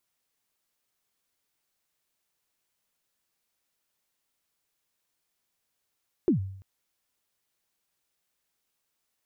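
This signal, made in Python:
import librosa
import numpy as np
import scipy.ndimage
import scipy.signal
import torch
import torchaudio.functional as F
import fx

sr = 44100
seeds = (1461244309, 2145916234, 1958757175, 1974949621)

y = fx.drum_kick(sr, seeds[0], length_s=0.34, level_db=-16.5, start_hz=400.0, end_hz=96.0, sweep_ms=113.0, decay_s=0.67, click=False)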